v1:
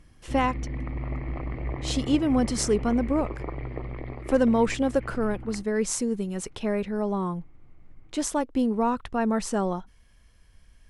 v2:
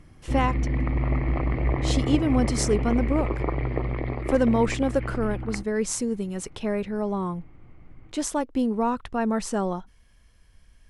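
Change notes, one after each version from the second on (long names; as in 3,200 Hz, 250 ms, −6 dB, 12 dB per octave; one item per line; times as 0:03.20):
background +7.5 dB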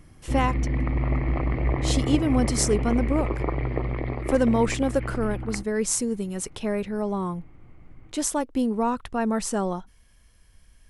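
speech: add high-shelf EQ 9,400 Hz +12 dB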